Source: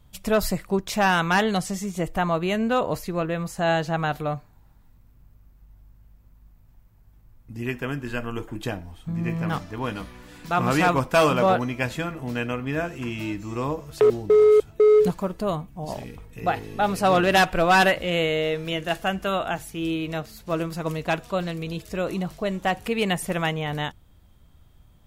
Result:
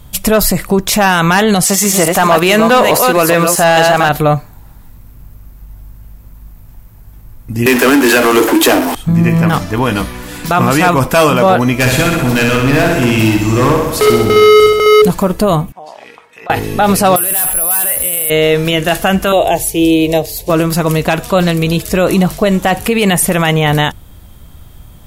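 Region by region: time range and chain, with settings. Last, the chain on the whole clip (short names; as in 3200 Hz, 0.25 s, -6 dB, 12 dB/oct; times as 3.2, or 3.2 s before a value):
1.63–4.09 reverse delay 0.214 s, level -6 dB + HPF 600 Hz 6 dB/oct + sample leveller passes 2
7.66–8.95 steep high-pass 250 Hz 96 dB/oct + power-law curve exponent 0.5
11.79–15.02 hard clip -26 dBFS + flutter echo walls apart 10.9 m, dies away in 1 s
15.72–16.5 HPF 890 Hz + compressor 12:1, threshold -43 dBFS + tape spacing loss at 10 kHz 21 dB
17.16–18.3 bell 200 Hz -7 dB 2 oct + careless resampling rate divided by 4×, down none, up zero stuff
19.32–20.5 bell 360 Hz +6.5 dB 1.5 oct + fixed phaser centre 560 Hz, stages 4
whole clip: bell 12000 Hz +8.5 dB 1 oct; maximiser +19 dB; gain -1 dB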